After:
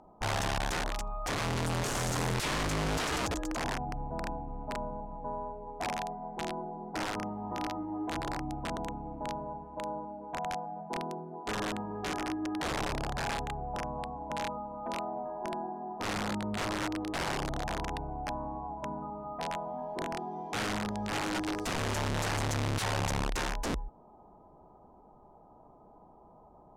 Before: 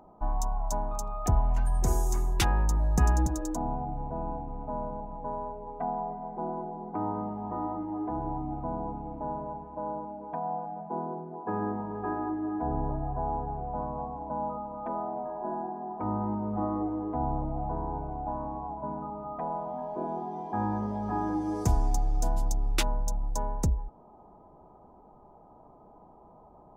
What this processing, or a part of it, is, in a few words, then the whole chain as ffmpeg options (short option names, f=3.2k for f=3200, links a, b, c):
overflowing digital effects unit: -af "aeval=exprs='(mod(16.8*val(0)+1,2)-1)/16.8':c=same,lowpass=8.6k,volume=-2.5dB"